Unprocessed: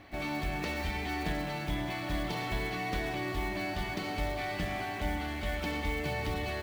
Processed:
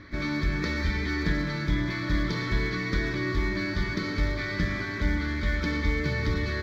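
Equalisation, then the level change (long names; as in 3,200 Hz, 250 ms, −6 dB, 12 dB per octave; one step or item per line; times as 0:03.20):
high-frequency loss of the air 56 metres
phaser with its sweep stopped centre 2,800 Hz, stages 6
+9.0 dB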